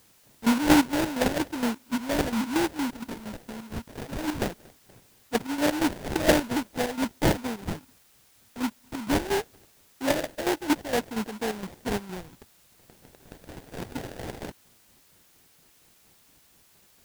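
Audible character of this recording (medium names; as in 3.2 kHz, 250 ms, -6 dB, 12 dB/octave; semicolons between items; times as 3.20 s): phasing stages 4, 0.21 Hz, lowest notch 450–1500 Hz; aliases and images of a low sample rate 1.2 kHz, jitter 20%; chopped level 4.3 Hz, depth 65%, duty 50%; a quantiser's noise floor 10-bit, dither triangular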